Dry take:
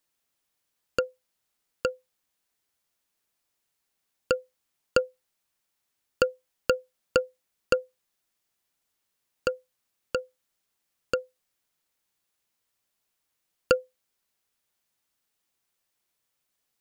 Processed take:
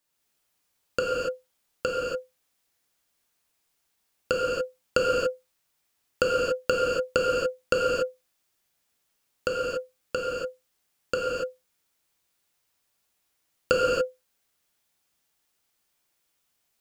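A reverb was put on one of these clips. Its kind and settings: non-linear reverb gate 0.31 s flat, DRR -4.5 dB; gain -1 dB

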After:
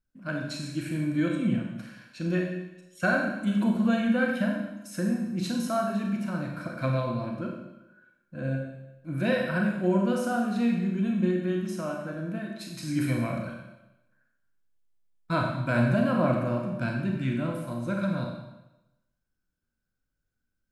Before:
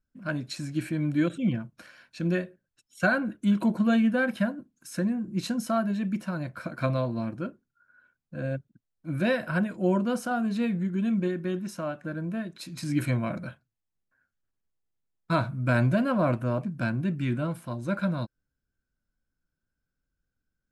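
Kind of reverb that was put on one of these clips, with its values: Schroeder reverb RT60 0.96 s, combs from 30 ms, DRR 0.5 dB; gain -2.5 dB

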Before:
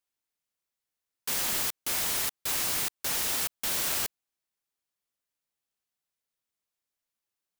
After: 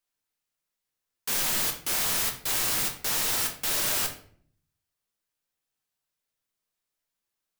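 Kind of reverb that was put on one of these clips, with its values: shoebox room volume 65 m³, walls mixed, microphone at 0.55 m; gain +1 dB

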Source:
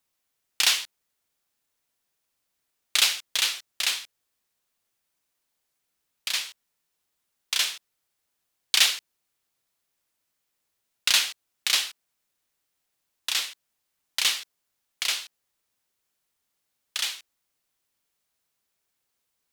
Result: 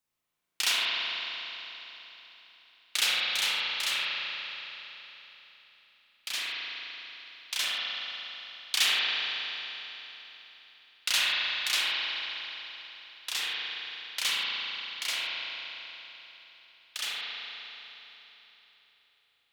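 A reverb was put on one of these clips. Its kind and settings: spring tank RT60 3.7 s, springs 37 ms, chirp 35 ms, DRR -7.5 dB; gain -7.5 dB

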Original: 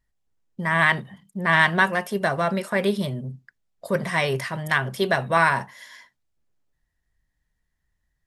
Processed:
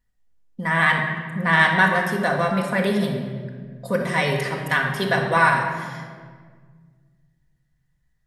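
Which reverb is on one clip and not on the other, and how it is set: shoebox room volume 2100 m³, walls mixed, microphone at 1.9 m; gain -1 dB

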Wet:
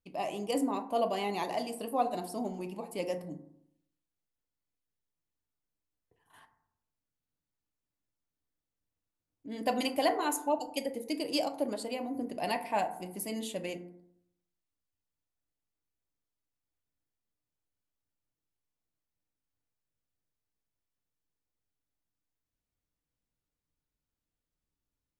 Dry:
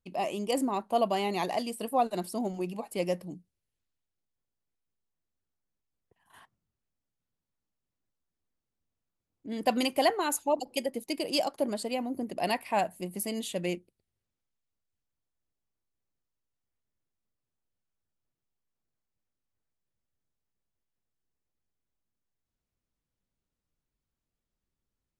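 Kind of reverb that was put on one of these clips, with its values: FDN reverb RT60 0.74 s, low-frequency decay 1.1×, high-frequency decay 0.35×, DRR 6 dB; gain -4 dB

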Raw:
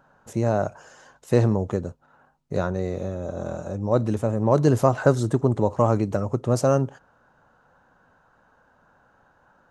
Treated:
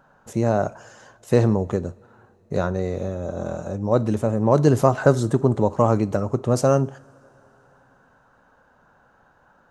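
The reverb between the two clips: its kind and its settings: two-slope reverb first 0.4 s, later 4.2 s, from -22 dB, DRR 16.5 dB; gain +2 dB

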